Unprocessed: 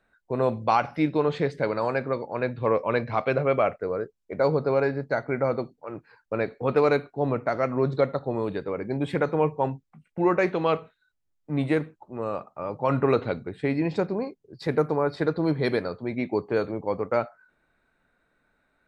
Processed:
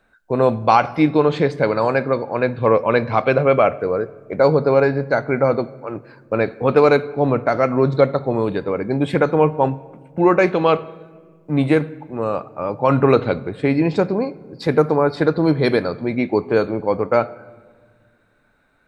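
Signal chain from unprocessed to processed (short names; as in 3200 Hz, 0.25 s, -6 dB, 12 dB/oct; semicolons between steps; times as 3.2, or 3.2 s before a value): notch 1900 Hz, Q 18; on a send: reverb RT60 1.7 s, pre-delay 4 ms, DRR 18 dB; on the sum: gain +8 dB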